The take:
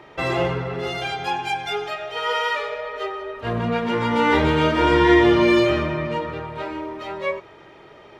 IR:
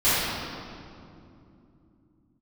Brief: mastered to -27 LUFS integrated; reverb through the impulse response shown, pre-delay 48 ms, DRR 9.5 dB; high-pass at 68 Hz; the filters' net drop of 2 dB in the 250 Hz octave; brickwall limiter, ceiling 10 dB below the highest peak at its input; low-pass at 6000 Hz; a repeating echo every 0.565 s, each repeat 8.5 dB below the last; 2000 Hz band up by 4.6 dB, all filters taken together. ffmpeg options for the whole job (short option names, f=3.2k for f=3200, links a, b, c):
-filter_complex "[0:a]highpass=68,lowpass=6k,equalizer=f=250:t=o:g=-3.5,equalizer=f=2k:t=o:g=5.5,alimiter=limit=-12dB:level=0:latency=1,aecho=1:1:565|1130|1695|2260:0.376|0.143|0.0543|0.0206,asplit=2[a][b];[1:a]atrim=start_sample=2205,adelay=48[c];[b][c]afir=irnorm=-1:irlink=0,volume=-28dB[d];[a][d]amix=inputs=2:normalize=0,volume=-5dB"